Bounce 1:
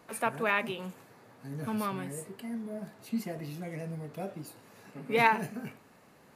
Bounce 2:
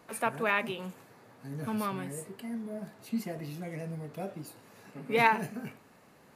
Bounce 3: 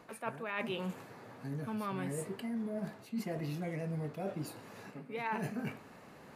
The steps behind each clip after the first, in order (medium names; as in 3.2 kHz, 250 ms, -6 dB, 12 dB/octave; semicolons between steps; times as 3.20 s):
no audible change
treble shelf 6.3 kHz -8 dB; reverse; compression 12:1, threshold -39 dBFS, peak gain reduction 20.5 dB; reverse; trim +5 dB